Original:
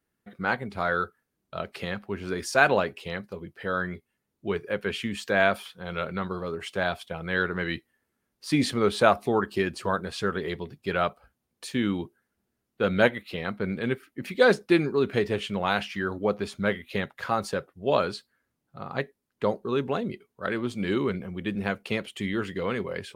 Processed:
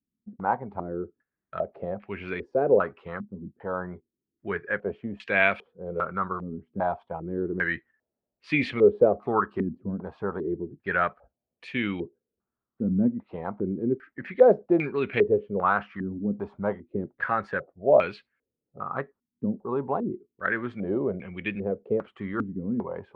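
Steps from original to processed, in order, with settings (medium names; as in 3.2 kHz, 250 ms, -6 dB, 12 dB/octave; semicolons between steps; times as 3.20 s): gate -49 dBFS, range -7 dB; step-sequenced low-pass 2.5 Hz 240–2400 Hz; trim -3.5 dB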